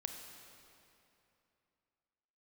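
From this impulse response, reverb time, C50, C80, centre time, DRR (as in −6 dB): 2.9 s, 4.5 dB, 5.5 dB, 65 ms, 4.0 dB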